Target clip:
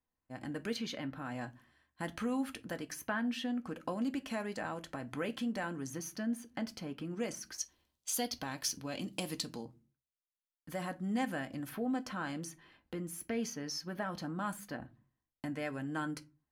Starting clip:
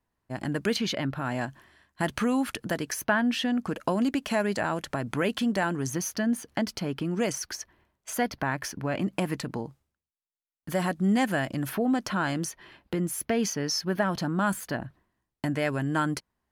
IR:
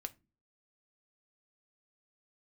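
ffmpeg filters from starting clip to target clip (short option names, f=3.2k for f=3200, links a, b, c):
-filter_complex "[0:a]asettb=1/sr,asplit=3[a][b][c];[a]atrim=end=7.584[d];[b]atrim=start=7.58:end=9.65,asetpts=PTS-STARTPTS,afade=t=in:d=0.004:c=qsin,afade=t=out:st=2.066:d=0.004:c=qsin,highshelf=f=2.7k:t=q:w=1.5:g=11.5[e];[c]atrim=start=9.646[f];[d][e]acrossfade=d=0.004:c1=hsin:c2=qsin[g];[g][f]acrossfade=d=0.004:c1=qsin:c2=hsin[h];[1:a]atrim=start_sample=2205,afade=t=out:st=0.36:d=0.01,atrim=end_sample=16317[i];[h][i]afir=irnorm=-1:irlink=0,volume=-8dB"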